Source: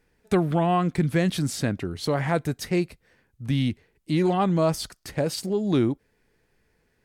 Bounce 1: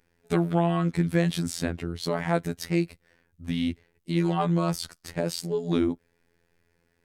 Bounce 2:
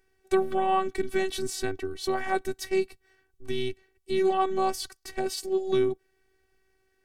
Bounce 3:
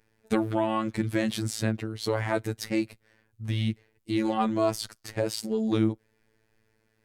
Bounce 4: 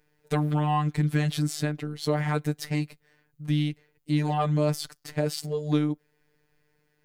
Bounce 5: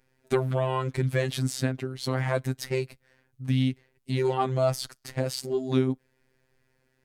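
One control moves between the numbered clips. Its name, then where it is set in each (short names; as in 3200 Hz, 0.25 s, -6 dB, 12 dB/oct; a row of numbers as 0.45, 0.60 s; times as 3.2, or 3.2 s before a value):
robotiser, frequency: 85, 380, 110, 150, 130 Hz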